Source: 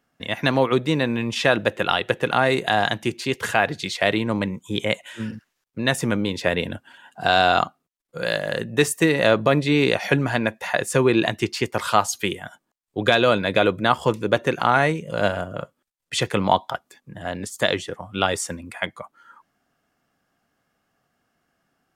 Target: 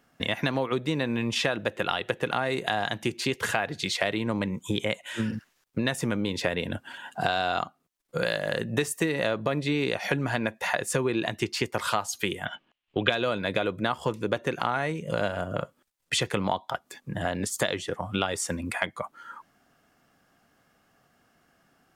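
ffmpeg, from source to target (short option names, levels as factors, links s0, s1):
-filter_complex "[0:a]acompressor=threshold=0.0282:ratio=5,asettb=1/sr,asplit=3[s0][s1][s2];[s0]atrim=end=12.454[s3];[s1]atrim=start=12.45:end=13.1,asetpts=PTS-STARTPTS,afade=t=in:d=0.004:c=qsin,afade=t=out:st=0.646:d=0.004:c=qsin,lowpass=f=2900:t=q:w=4.7[s4];[s2]atrim=start=13.096[s5];[s3][s4]acrossfade=d=0.004:c1=hsin:c2=qsin[s6];[s6][s5]acrossfade=d=0.004:c1=qsin:c2=hsin,volume=2"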